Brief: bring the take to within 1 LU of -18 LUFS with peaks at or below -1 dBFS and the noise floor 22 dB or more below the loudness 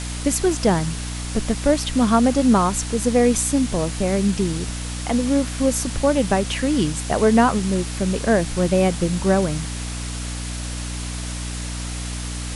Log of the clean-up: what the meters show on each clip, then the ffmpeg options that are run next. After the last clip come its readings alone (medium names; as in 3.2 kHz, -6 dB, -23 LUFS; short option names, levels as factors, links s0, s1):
hum 60 Hz; highest harmonic 300 Hz; hum level -27 dBFS; noise floor -29 dBFS; noise floor target -43 dBFS; loudness -21.0 LUFS; peak level -4.0 dBFS; loudness target -18.0 LUFS
-> -af "bandreject=f=60:t=h:w=4,bandreject=f=120:t=h:w=4,bandreject=f=180:t=h:w=4,bandreject=f=240:t=h:w=4,bandreject=f=300:t=h:w=4"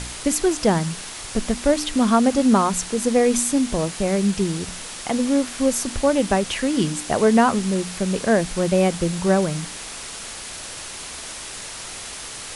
hum not found; noise floor -35 dBFS; noise floor target -43 dBFS
-> -af "afftdn=nr=8:nf=-35"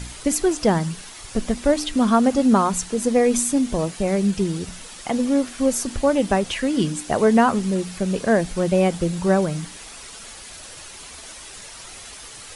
noise floor -40 dBFS; noise floor target -43 dBFS
-> -af "afftdn=nr=6:nf=-40"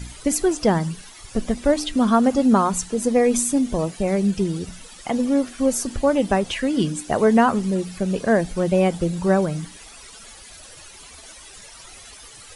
noise floor -43 dBFS; loudness -21.0 LUFS; peak level -5.0 dBFS; loudness target -18.0 LUFS
-> -af "volume=1.41"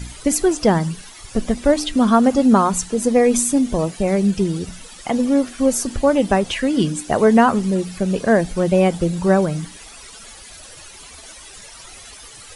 loudness -18.0 LUFS; peak level -2.0 dBFS; noise floor -40 dBFS